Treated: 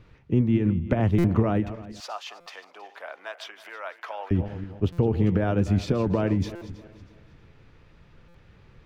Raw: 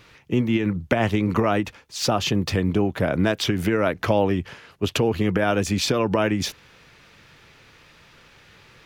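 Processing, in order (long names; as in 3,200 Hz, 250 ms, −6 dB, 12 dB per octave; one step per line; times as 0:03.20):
feedback delay that plays each chunk backwards 160 ms, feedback 56%, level −13.5 dB
spectral tilt −3.5 dB per octave
0:02.00–0:04.31: high-pass filter 810 Hz 24 dB per octave
buffer that repeats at 0:01.18/0:02.40/0:04.92/0:06.55/0:08.28, samples 256, times 10
level −8 dB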